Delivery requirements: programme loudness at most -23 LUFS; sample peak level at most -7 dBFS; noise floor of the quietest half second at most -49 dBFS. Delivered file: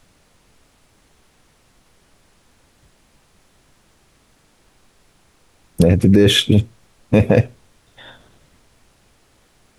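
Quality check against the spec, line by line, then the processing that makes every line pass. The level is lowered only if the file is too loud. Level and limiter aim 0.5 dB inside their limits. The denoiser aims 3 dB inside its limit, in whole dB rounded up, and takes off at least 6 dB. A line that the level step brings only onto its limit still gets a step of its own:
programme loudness -15.0 LUFS: fail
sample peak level -2.0 dBFS: fail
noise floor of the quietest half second -57 dBFS: pass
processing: trim -8.5 dB

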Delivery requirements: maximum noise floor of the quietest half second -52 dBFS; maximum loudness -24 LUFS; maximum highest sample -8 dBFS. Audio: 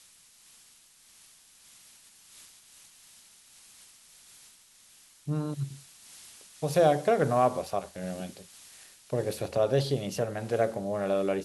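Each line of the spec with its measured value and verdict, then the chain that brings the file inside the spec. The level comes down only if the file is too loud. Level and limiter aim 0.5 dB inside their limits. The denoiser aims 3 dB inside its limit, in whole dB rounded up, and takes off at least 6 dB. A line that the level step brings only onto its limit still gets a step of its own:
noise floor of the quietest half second -58 dBFS: pass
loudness -29.0 LUFS: pass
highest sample -11.0 dBFS: pass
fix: none needed

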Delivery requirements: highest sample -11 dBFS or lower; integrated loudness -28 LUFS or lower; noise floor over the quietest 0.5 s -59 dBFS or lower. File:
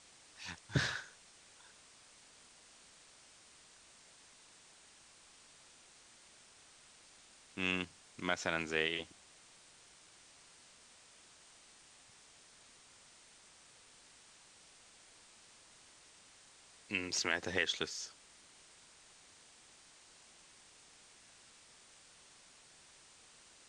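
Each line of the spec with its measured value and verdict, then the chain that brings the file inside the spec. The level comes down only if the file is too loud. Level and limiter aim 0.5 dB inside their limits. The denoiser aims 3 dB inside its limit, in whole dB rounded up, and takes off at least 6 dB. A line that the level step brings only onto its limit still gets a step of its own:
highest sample -16.5 dBFS: pass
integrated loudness -37.5 LUFS: pass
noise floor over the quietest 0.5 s -62 dBFS: pass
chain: none needed

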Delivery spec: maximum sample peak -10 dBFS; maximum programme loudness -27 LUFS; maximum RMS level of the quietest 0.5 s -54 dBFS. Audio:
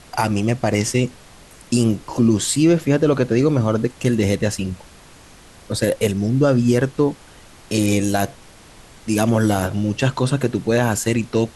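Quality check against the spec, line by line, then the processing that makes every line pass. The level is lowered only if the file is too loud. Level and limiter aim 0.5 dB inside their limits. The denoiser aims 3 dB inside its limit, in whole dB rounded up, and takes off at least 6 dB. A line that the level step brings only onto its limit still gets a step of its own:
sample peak -5.5 dBFS: fail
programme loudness -19.5 LUFS: fail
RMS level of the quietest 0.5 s -45 dBFS: fail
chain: noise reduction 6 dB, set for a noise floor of -45 dBFS; trim -8 dB

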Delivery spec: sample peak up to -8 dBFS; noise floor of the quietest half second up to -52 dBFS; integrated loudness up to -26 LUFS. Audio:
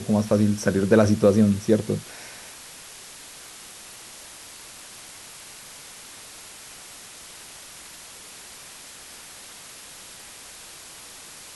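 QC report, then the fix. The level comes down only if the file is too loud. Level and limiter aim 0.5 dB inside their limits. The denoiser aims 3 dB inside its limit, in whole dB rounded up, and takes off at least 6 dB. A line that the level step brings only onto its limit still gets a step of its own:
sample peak -5.5 dBFS: fail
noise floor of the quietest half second -43 dBFS: fail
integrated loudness -20.5 LUFS: fail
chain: noise reduction 6 dB, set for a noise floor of -43 dBFS; trim -6 dB

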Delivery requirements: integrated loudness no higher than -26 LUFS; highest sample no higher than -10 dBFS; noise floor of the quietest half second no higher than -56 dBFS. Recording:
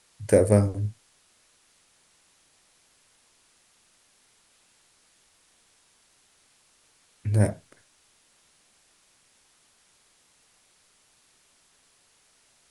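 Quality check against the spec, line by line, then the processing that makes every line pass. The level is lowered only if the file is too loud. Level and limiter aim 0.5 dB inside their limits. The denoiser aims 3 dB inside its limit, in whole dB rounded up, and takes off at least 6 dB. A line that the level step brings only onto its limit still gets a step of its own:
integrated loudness -24.0 LUFS: fail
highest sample -5.0 dBFS: fail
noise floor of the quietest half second -64 dBFS: pass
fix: trim -2.5 dB; peak limiter -10.5 dBFS

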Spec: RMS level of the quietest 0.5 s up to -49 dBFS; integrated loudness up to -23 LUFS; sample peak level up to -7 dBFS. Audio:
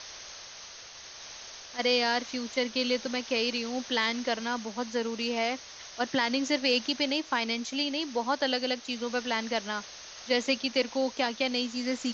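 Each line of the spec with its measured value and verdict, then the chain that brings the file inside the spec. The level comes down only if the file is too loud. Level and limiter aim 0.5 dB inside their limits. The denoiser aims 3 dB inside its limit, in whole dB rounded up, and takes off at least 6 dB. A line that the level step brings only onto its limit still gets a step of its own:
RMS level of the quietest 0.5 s -47 dBFS: fail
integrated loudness -29.5 LUFS: pass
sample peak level -13.0 dBFS: pass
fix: noise reduction 6 dB, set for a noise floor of -47 dBFS

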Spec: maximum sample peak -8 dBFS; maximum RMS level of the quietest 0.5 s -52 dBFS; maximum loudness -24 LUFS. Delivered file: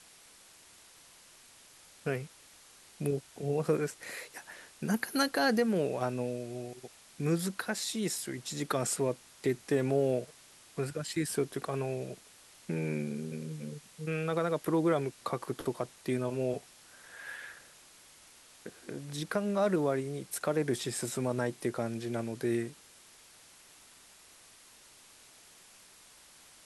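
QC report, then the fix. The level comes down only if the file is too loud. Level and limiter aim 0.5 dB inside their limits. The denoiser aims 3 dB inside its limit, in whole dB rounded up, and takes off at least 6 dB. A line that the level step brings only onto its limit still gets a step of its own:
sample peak -16.0 dBFS: pass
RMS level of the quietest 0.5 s -57 dBFS: pass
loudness -33.5 LUFS: pass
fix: none needed

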